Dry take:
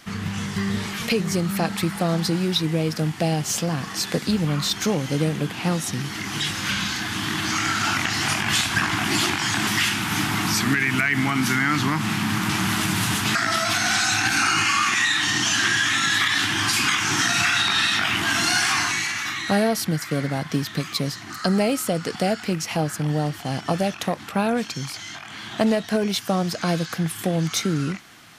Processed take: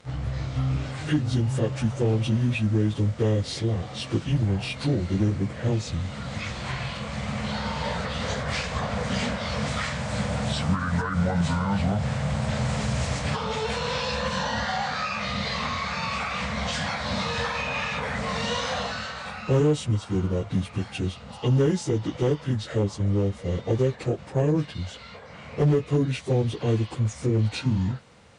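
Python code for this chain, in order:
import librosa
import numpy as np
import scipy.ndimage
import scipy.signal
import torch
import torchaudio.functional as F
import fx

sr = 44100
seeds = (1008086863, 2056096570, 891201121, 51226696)

y = fx.pitch_bins(x, sr, semitones=-7.0)
y = fx.low_shelf_res(y, sr, hz=710.0, db=6.5, q=1.5)
y = fx.clip_asym(y, sr, top_db=-10.0, bottom_db=-8.0)
y = y * librosa.db_to_amplitude(-6.0)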